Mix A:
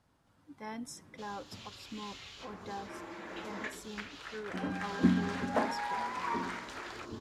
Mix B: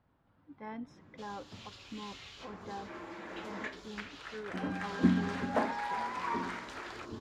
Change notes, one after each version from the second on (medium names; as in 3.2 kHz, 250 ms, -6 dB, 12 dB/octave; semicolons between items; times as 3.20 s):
speech: add distance through air 290 m; master: add treble shelf 6.2 kHz -5 dB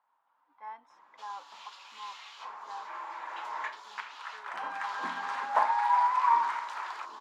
speech -5.5 dB; master: add resonant high-pass 950 Hz, resonance Q 4.7